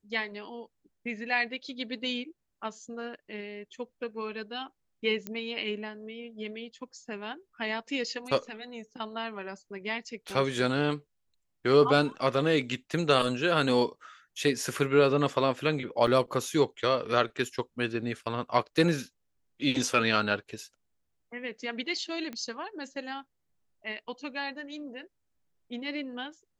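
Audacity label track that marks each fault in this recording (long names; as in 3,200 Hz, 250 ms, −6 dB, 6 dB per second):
5.270000	5.270000	click −19 dBFS
10.300000	10.300000	drop-out 2.8 ms
16.070000	16.080000	drop-out 5.2 ms
22.330000	22.330000	click −25 dBFS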